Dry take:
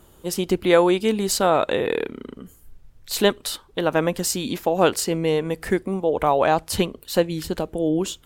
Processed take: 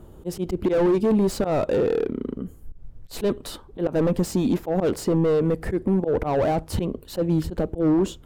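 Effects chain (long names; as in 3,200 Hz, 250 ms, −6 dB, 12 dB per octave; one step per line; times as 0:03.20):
volume swells 107 ms
gain into a clipping stage and back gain 23.5 dB
tilt shelving filter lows +9 dB, about 1,100 Hz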